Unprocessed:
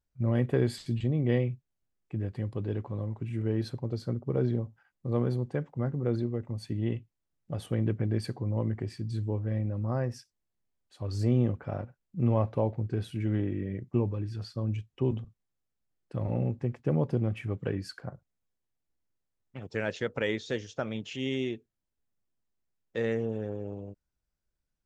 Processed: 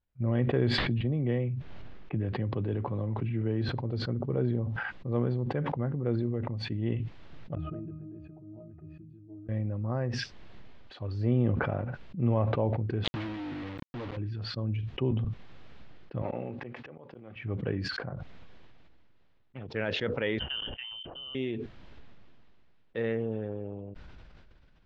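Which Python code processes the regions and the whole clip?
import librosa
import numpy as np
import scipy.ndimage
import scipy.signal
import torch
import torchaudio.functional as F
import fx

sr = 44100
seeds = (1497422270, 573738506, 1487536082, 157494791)

y = fx.chain(x, sr, fx.high_shelf(hz=3800.0, db=-5.5),
    fx.band_squash(depth_pct=70), at=(0.78, 3.69))
y = fx.chain(y, sr, fx.octave_resonator(note='D#', decay_s=0.29),
    fx.resample_linear(factor=4), at=(7.55, 9.49))
y = fx.chain(y, sr, fx.ripple_eq(per_octave=1.1, db=14),
    fx.quant_dither(seeds[0], bits=6, dither='none'),
    fx.overload_stage(gain_db=34.0), at=(13.04, 14.17))
y = fx.chain(y, sr, fx.weighting(curve='A'),
    fx.auto_swell(attack_ms=334.0), at=(16.22, 17.36))
y = fx.chain(y, sr, fx.highpass_res(hz=230.0, q=2.4),
    fx.level_steps(step_db=20),
    fx.freq_invert(carrier_hz=3300), at=(20.39, 21.35))
y = scipy.signal.sosfilt(scipy.signal.butter(4, 3700.0, 'lowpass', fs=sr, output='sos'), y)
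y = fx.sustainer(y, sr, db_per_s=21.0)
y = F.gain(torch.from_numpy(y), -1.5).numpy()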